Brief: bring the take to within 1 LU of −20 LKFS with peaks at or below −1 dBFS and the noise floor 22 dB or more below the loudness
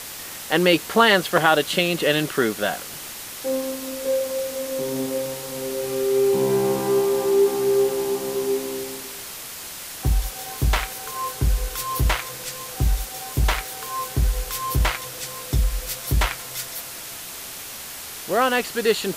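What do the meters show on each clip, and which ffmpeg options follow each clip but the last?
background noise floor −36 dBFS; target noise floor −46 dBFS; integrated loudness −23.5 LKFS; sample peak −3.0 dBFS; target loudness −20.0 LKFS
→ -af "afftdn=noise_reduction=10:noise_floor=-36"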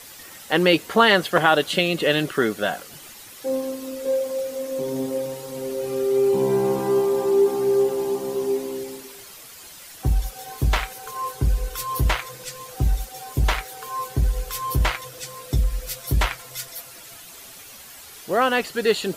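background noise floor −43 dBFS; target noise floor −45 dBFS
→ -af "afftdn=noise_reduction=6:noise_floor=-43"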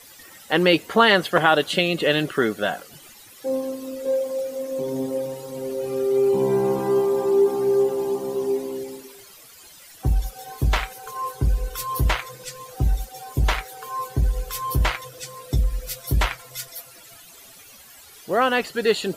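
background noise floor −47 dBFS; integrated loudness −23.0 LKFS; sample peak −3.0 dBFS; target loudness −20.0 LKFS
→ -af "volume=3dB,alimiter=limit=-1dB:level=0:latency=1"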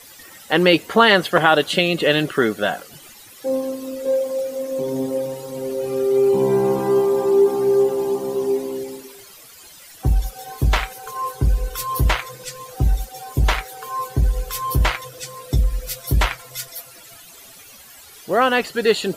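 integrated loudness −20.0 LKFS; sample peak −1.0 dBFS; background noise floor −44 dBFS

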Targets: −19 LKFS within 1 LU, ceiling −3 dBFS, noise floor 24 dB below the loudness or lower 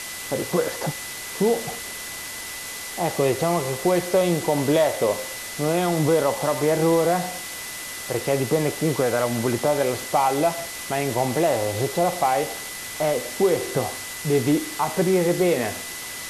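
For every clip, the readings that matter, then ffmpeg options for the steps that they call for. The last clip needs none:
interfering tone 2,000 Hz; level of the tone −38 dBFS; background noise floor −34 dBFS; target noise floor −47 dBFS; integrated loudness −23.0 LKFS; sample peak −9.0 dBFS; target loudness −19.0 LKFS
→ -af "bandreject=frequency=2000:width=30"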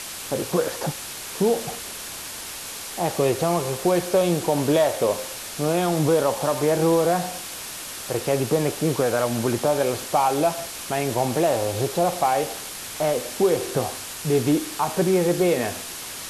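interfering tone none found; background noise floor −35 dBFS; target noise floor −48 dBFS
→ -af "afftdn=noise_reduction=13:noise_floor=-35"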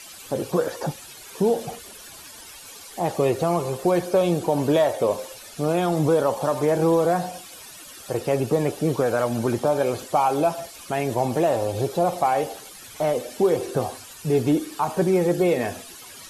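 background noise floor −43 dBFS; target noise floor −47 dBFS
→ -af "afftdn=noise_reduction=6:noise_floor=-43"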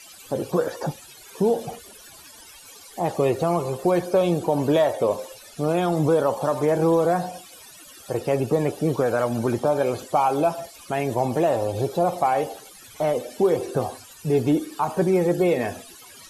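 background noise floor −46 dBFS; target noise floor −48 dBFS
→ -af "afftdn=noise_reduction=6:noise_floor=-46"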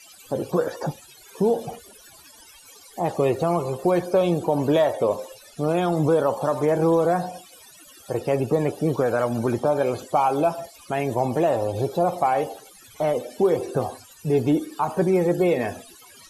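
background noise floor −49 dBFS; integrated loudness −23.5 LKFS; sample peak −9.5 dBFS; target loudness −19.0 LKFS
→ -af "volume=4.5dB"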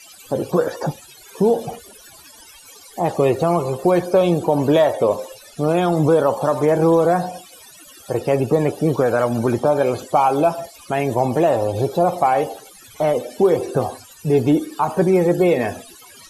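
integrated loudness −19.0 LKFS; sample peak −5.0 dBFS; background noise floor −45 dBFS

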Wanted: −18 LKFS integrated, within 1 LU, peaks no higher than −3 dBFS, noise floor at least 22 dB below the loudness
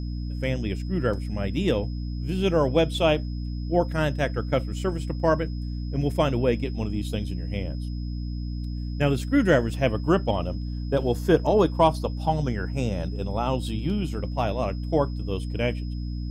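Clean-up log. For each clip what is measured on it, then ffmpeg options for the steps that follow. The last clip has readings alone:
mains hum 60 Hz; hum harmonics up to 300 Hz; level of the hum −28 dBFS; interfering tone 5,100 Hz; level of the tone −50 dBFS; integrated loudness −26.0 LKFS; sample peak −6.0 dBFS; target loudness −18.0 LKFS
→ -af "bandreject=frequency=60:width_type=h:width=6,bandreject=frequency=120:width_type=h:width=6,bandreject=frequency=180:width_type=h:width=6,bandreject=frequency=240:width_type=h:width=6,bandreject=frequency=300:width_type=h:width=6"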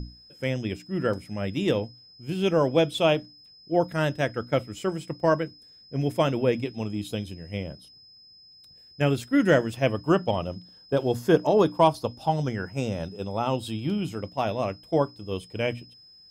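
mains hum none found; interfering tone 5,100 Hz; level of the tone −50 dBFS
→ -af "bandreject=frequency=5100:width=30"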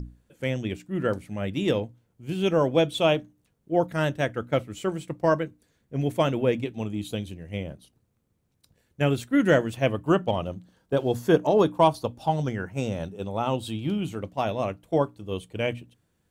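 interfering tone none found; integrated loudness −26.5 LKFS; sample peak −7.0 dBFS; target loudness −18.0 LKFS
→ -af "volume=8.5dB,alimiter=limit=-3dB:level=0:latency=1"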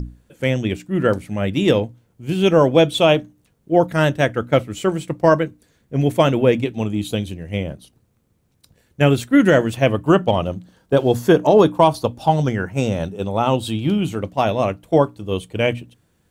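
integrated loudness −18.5 LKFS; sample peak −3.0 dBFS; background noise floor −63 dBFS

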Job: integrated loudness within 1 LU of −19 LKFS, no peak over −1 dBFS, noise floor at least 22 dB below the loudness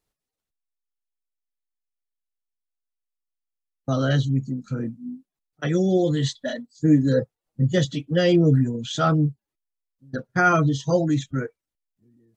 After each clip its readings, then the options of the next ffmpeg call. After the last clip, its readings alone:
integrated loudness −22.5 LKFS; sample peak −7.5 dBFS; target loudness −19.0 LKFS
→ -af "volume=3.5dB"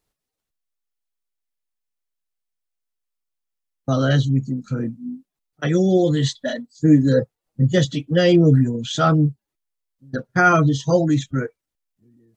integrated loudness −19.0 LKFS; sample peak −4.0 dBFS; background noise floor −84 dBFS

